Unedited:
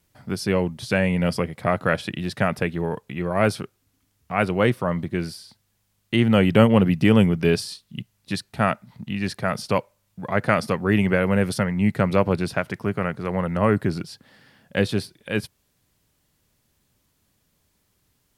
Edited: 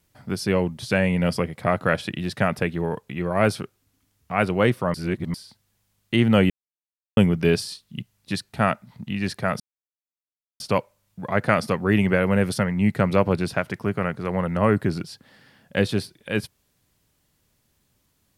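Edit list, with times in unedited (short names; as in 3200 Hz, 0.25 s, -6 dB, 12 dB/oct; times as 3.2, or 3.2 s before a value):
4.94–5.34 reverse
6.5–7.17 mute
9.6 insert silence 1.00 s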